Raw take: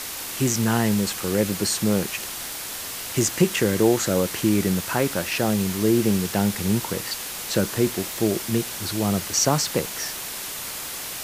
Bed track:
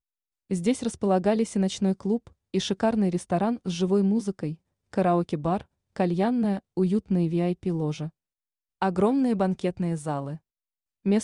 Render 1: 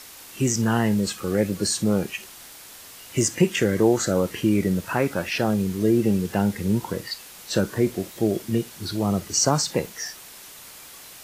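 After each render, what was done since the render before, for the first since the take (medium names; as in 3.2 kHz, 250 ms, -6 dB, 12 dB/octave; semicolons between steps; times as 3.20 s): noise print and reduce 11 dB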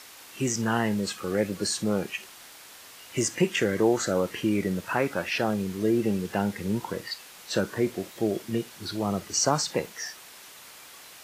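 low-pass 1.8 kHz 6 dB/octave; tilt EQ +2.5 dB/octave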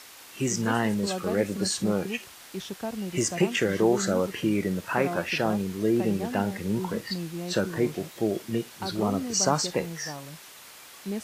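add bed track -10 dB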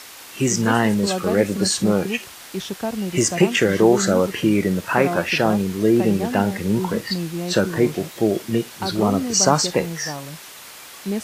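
trim +7.5 dB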